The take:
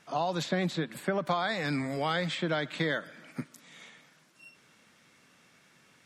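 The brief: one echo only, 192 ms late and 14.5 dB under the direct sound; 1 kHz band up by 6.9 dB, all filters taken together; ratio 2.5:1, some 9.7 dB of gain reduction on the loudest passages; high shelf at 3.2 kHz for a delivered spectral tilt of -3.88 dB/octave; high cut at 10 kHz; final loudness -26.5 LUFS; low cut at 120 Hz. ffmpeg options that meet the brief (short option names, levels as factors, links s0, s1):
-af "highpass=120,lowpass=10000,equalizer=f=1000:t=o:g=8.5,highshelf=f=3200:g=7.5,acompressor=threshold=0.02:ratio=2.5,aecho=1:1:192:0.188,volume=2.82"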